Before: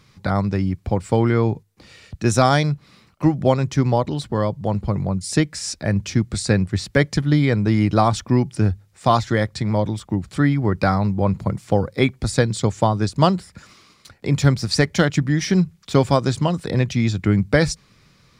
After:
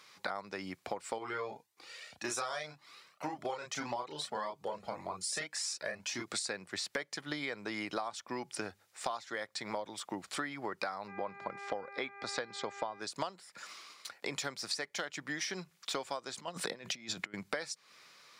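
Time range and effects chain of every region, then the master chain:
1.18–6.28 s: doubling 33 ms -3.5 dB + Shepard-style flanger rising 1.8 Hz
11.07–12.99 s: mains buzz 400 Hz, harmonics 6, -40 dBFS -3 dB/octave + distance through air 130 m
16.38–17.34 s: peaking EQ 190 Hz +7 dB 0.84 oct + compressor with a negative ratio -21 dBFS, ratio -0.5
whole clip: high-pass 640 Hz 12 dB/octave; compression 16:1, threshold -34 dBFS

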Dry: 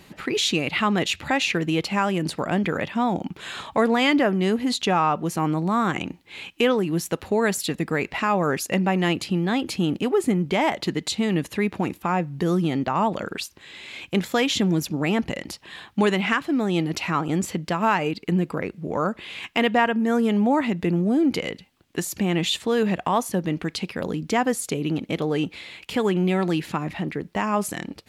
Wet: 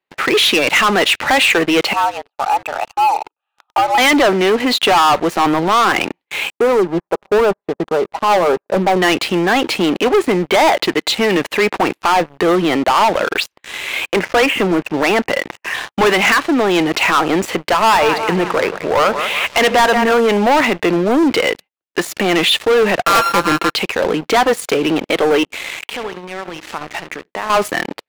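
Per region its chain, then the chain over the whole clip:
1.93–3.98 s: vowel filter a + frequency shift +120 Hz
6.50–9.02 s: low-pass 1.1 kHz 24 dB/octave + comb 5 ms, depth 36% + upward expansion, over -35 dBFS
14.14–15.74 s: Chebyshev low-pass 2.8 kHz, order 6 + tape noise reduction on one side only encoder only
17.74–20.14 s: peaking EQ 310 Hz -4.5 dB 0.32 oct + two-band feedback delay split 530 Hz, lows 84 ms, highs 181 ms, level -14 dB
23.05–23.73 s: sorted samples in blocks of 32 samples + comb 6 ms, depth 66%
25.43–27.50 s: compression 5:1, threshold -37 dBFS + delay 72 ms -11.5 dB
whole clip: gate -45 dBFS, range -19 dB; three-band isolator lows -20 dB, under 380 Hz, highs -16 dB, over 3.5 kHz; waveshaping leveller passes 5; trim +1 dB

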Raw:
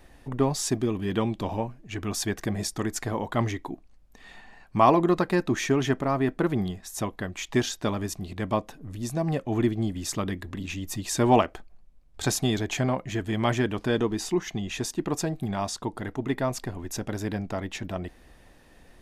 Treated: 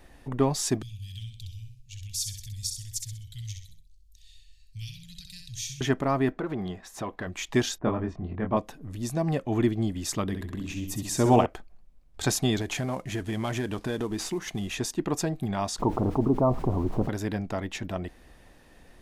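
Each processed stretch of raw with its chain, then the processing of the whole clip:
0.82–5.81 s: inverse Chebyshev band-stop 320–1100 Hz, stop band 70 dB + feedback delay 64 ms, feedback 36%, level -6 dB
6.32–7.27 s: compression 4:1, threshold -27 dBFS + overdrive pedal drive 13 dB, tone 1.2 kHz, clips at -19.5 dBFS
7.78–8.57 s: low-pass 1.5 kHz + level-controlled noise filter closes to 960 Hz, open at -25.5 dBFS + doubling 23 ms -4 dB
10.26–11.46 s: de-esser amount 25% + peaking EQ 2.2 kHz -5 dB 2.6 oct + flutter echo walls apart 11.2 m, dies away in 0.53 s
12.61–14.75 s: CVSD coder 64 kbps + compression 4:1, threshold -26 dBFS
15.78–17.08 s: steep low-pass 1.2 kHz 72 dB/octave + added noise brown -49 dBFS + level flattener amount 50%
whole clip: none

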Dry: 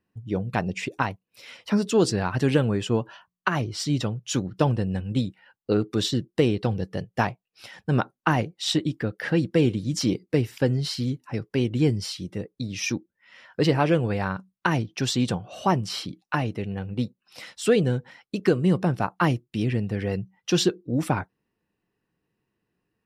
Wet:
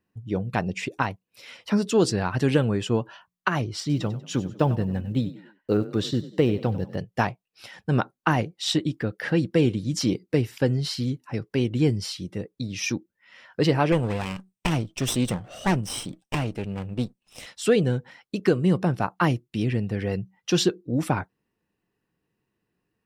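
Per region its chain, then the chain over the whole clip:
3.80–6.98 s: block-companded coder 7-bit + treble shelf 3.5 kHz -9 dB + frequency-shifting echo 95 ms, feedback 37%, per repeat +32 Hz, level -16 dB
13.92–17.46 s: comb filter that takes the minimum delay 0.34 ms + peaking EQ 8.3 kHz +7.5 dB 0.33 oct
whole clip: none

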